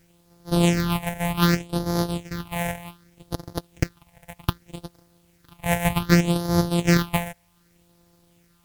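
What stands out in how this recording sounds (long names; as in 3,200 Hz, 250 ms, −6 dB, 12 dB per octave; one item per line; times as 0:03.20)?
a buzz of ramps at a fixed pitch in blocks of 256 samples
phaser sweep stages 6, 0.65 Hz, lowest notch 320–2,600 Hz
a quantiser's noise floor 12 bits, dither triangular
MP3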